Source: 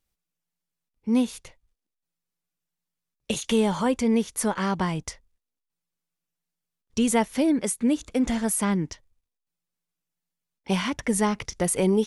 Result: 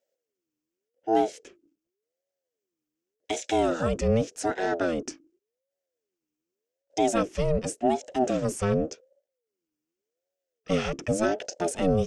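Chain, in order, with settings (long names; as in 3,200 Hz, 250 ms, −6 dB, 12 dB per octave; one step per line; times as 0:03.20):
sub-octave generator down 1 octave, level 0 dB
phaser with its sweep stopped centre 2,600 Hz, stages 8
ring modulator whose carrier an LFO sweeps 430 Hz, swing 30%, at 0.87 Hz
level +1.5 dB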